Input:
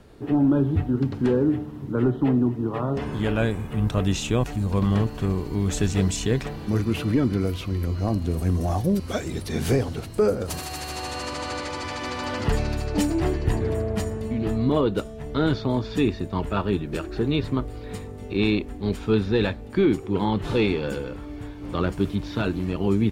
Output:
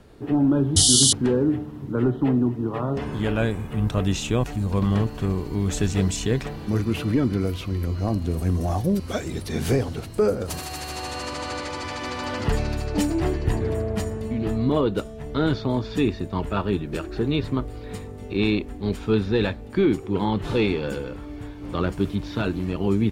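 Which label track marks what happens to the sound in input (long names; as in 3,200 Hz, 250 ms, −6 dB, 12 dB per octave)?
0.760000	1.130000	sound drawn into the spectrogram noise 2,900–11,000 Hz −17 dBFS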